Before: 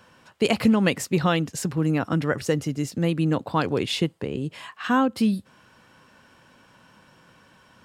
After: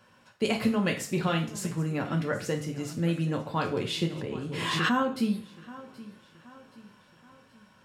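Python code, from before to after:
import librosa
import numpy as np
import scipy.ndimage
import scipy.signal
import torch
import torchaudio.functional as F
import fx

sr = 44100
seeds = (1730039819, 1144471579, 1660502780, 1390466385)

y = fx.echo_feedback(x, sr, ms=776, feedback_pct=46, wet_db=-18.0)
y = fx.rev_double_slope(y, sr, seeds[0], early_s=0.38, late_s=1.9, knee_db=-27, drr_db=1.5)
y = fx.pre_swell(y, sr, db_per_s=27.0, at=(4.02, 4.99))
y = y * librosa.db_to_amplitude(-7.5)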